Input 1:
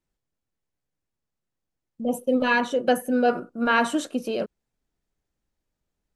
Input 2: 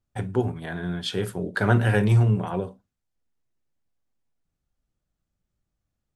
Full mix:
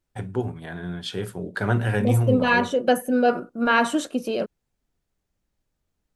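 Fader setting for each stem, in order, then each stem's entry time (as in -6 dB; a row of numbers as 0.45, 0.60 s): +1.5, -2.5 dB; 0.00, 0.00 s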